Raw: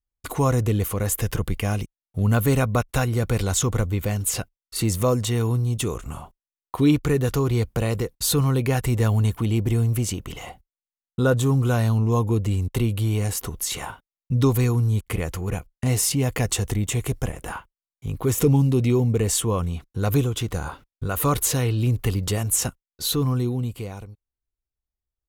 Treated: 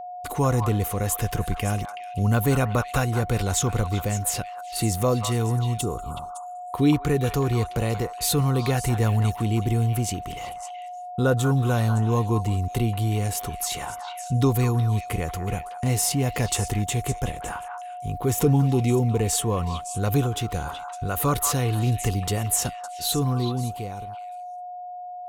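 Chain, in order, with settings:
gain on a spectral selection 0:05.81–0:06.29, 1,500–6,700 Hz −23 dB
echo through a band-pass that steps 187 ms, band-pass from 1,100 Hz, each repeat 1.4 octaves, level −4 dB
steady tone 720 Hz −32 dBFS
level −1.5 dB

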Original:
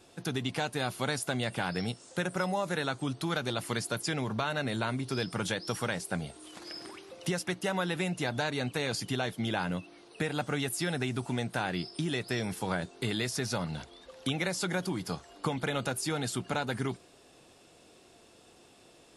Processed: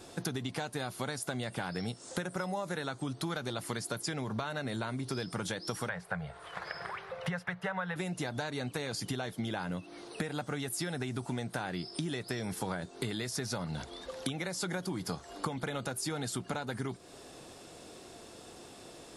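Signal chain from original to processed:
0:05.89–0:07.96: drawn EQ curve 180 Hz 0 dB, 280 Hz −30 dB, 450 Hz −2 dB, 1,700 Hz +6 dB, 6,500 Hz −18 dB
downward compressor 6 to 1, threshold −41 dBFS, peak gain reduction 15 dB
parametric band 2,700 Hz −4.5 dB 0.55 octaves
level +8 dB

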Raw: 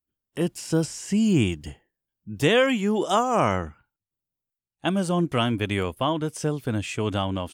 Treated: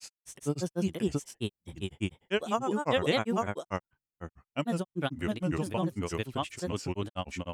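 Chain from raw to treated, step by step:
granular cloud 100 ms, grains 20 per second, spray 681 ms, pitch spread up and down by 3 semitones
level −5.5 dB

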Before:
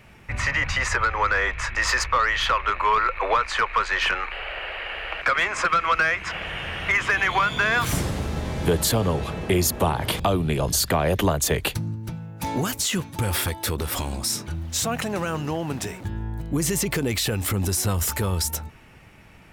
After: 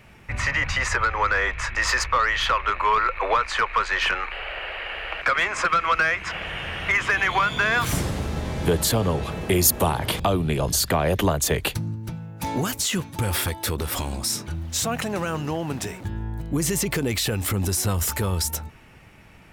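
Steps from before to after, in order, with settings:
0:09.30–0:09.98: high-shelf EQ 11,000 Hz → 5,700 Hz +9.5 dB

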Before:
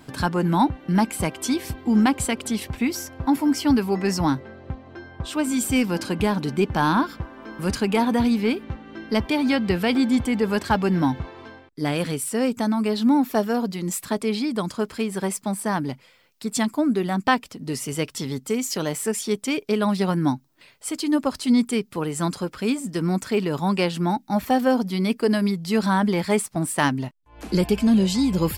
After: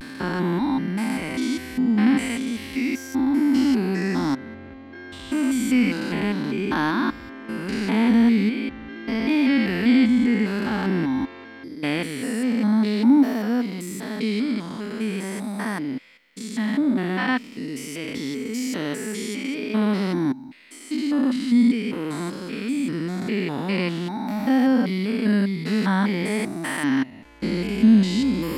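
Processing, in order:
spectrum averaged block by block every 200 ms
graphic EQ with 10 bands 125 Hz −7 dB, 250 Hz +11 dB, 2,000 Hz +11 dB, 4,000 Hz +4 dB
pitch vibrato 0.46 Hz 43 cents
level −3.5 dB

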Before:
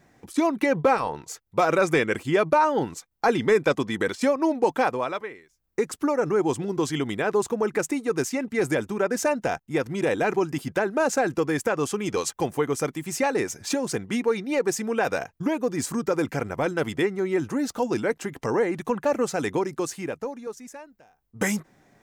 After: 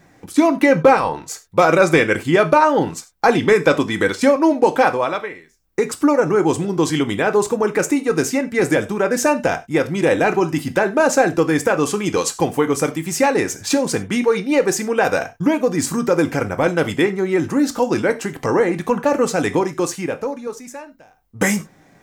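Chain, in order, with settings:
reverb whose tail is shaped and stops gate 120 ms falling, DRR 7.5 dB
level +7 dB

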